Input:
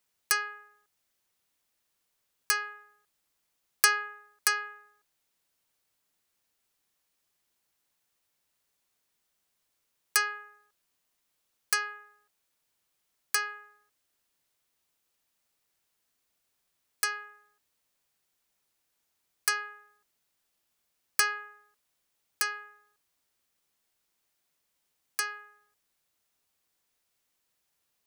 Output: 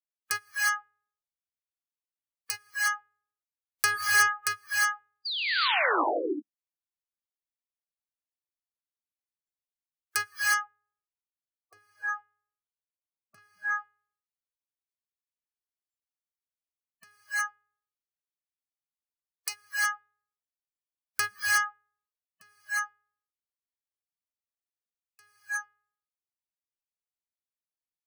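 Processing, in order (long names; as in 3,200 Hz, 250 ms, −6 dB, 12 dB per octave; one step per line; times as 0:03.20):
sub-octave generator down 2 octaves, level +2 dB
0:05.25–0:06.04: sound drawn into the spectrogram fall 280–4,900 Hz −27 dBFS
0:10.27–0:13.38: high-shelf EQ 2,000 Hz −8.5 dB
reverb whose tail is shaped and stops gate 390 ms rising, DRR −4 dB
dynamic equaliser 1,500 Hz, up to +4 dB, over −33 dBFS, Q 1.4
noise reduction from a noise print of the clip's start 26 dB
level −5 dB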